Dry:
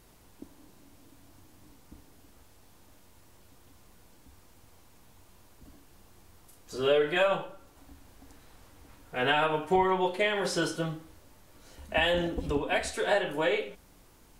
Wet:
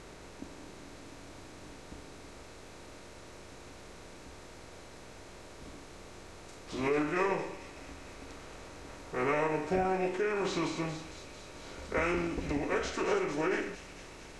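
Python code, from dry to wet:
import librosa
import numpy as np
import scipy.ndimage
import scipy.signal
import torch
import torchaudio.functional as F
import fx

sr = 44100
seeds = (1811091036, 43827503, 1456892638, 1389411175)

y = fx.bin_compress(x, sr, power=0.6)
y = fx.formant_shift(y, sr, semitones=-5)
y = fx.echo_wet_highpass(y, sr, ms=226, feedback_pct=76, hz=3600.0, wet_db=-7.0)
y = y * librosa.db_to_amplitude(-7.0)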